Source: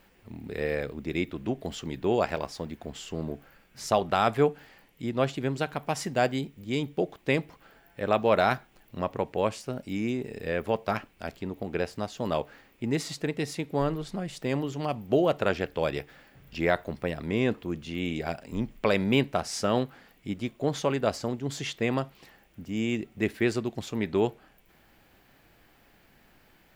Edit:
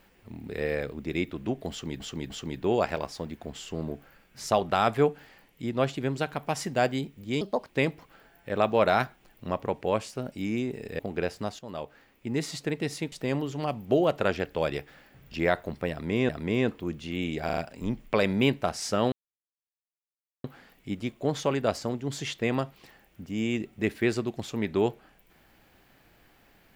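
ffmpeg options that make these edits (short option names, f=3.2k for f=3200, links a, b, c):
-filter_complex "[0:a]asplit=13[a][b][c][d][e][f][g][h][i][j][k][l][m];[a]atrim=end=2.002[n];[b]atrim=start=1.698:end=2.002[o];[c]atrim=start=1.698:end=6.814[p];[d]atrim=start=6.81:end=7.2,asetpts=PTS-STARTPTS,asetrate=61299,aresample=44100,atrim=end_sample=12373,asetpts=PTS-STARTPTS[q];[e]atrim=start=7.196:end=10.502[r];[f]atrim=start=11.558:end=12.16,asetpts=PTS-STARTPTS,afade=t=out:st=0.598:d=0.004:c=hsin:silence=0.237137[s];[g]atrim=start=12.16:end=13.692,asetpts=PTS-STARTPTS,afade=t=in:d=0.96:silence=0.237137[t];[h]atrim=start=14.328:end=17.502[u];[i]atrim=start=17.118:end=18.322[v];[j]atrim=start=18.278:end=18.322[w];[k]atrim=start=18.278:end=18.322[x];[l]atrim=start=18.278:end=19.83,asetpts=PTS-STARTPTS,afade=t=out:st=1.548:d=0.004:c=hsin,apad=pad_dur=1.32[y];[m]atrim=start=19.83,asetpts=PTS-STARTPTS,afade=t=in:d=0.004:c=hsin[z];[n][o]acrossfade=d=0.004:c1=hsin:c2=hsin[aa];[aa][p]acrossfade=d=0.004:c1=hsin:c2=hsin[ab];[ab][q]acrossfade=d=0.004:c1=hsin:c2=hsin[ac];[ac][r]acrossfade=d=0.004:c1=hsin:c2=hsin[ad];[s][t]concat=n=2:v=0:a=1[ae];[ad][ae]acrossfade=d=0.004:c1=hsin:c2=hsin[af];[af][u]acrossfade=d=0.004:c1=hsin:c2=hsin[ag];[ag][v]acrossfade=d=0.004:c1=hsin:c2=hsin[ah];[ah][w]acrossfade=d=0.004:c1=hsin:c2=hsin[ai];[ai][x]acrossfade=d=0.004:c1=hsin:c2=hsin[aj];[y][z]concat=n=2:v=0:a=1[ak];[aj][ak]acrossfade=d=0.004:c1=hsin:c2=hsin"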